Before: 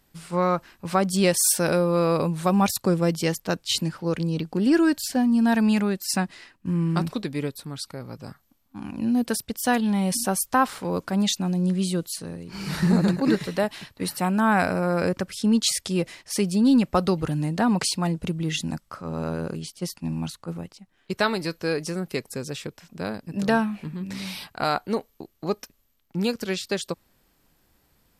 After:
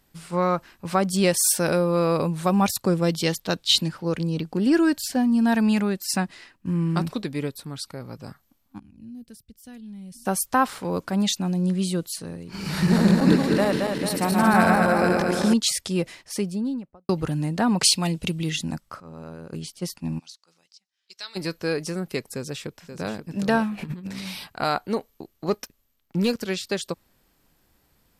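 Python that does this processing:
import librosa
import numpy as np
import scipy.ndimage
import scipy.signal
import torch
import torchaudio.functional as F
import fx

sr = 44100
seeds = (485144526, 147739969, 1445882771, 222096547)

y = fx.peak_eq(x, sr, hz=3700.0, db=9.0, octaves=0.61, at=(3.04, 3.88))
y = fx.tone_stack(y, sr, knobs='10-0-1', at=(8.78, 10.25), fade=0.02)
y = fx.reverse_delay_fb(y, sr, ms=111, feedback_pct=75, wet_db=-1.5, at=(12.43, 15.54))
y = fx.studio_fade_out(y, sr, start_s=16.08, length_s=1.01)
y = fx.high_shelf_res(y, sr, hz=2000.0, db=7.0, q=1.5, at=(17.83, 18.5))
y = fx.bandpass_q(y, sr, hz=5200.0, q=2.5, at=(20.18, 21.35), fade=0.02)
y = fx.echo_throw(y, sr, start_s=22.34, length_s=0.76, ms=530, feedback_pct=25, wet_db=-9.0)
y = fx.over_compress(y, sr, threshold_db=-37.0, ratio=-0.5, at=(23.77, 24.25), fade=0.02)
y = fx.leveller(y, sr, passes=1, at=(25.48, 26.39))
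y = fx.edit(y, sr, fx.clip_gain(start_s=19.0, length_s=0.53, db=-10.5), tone=tone)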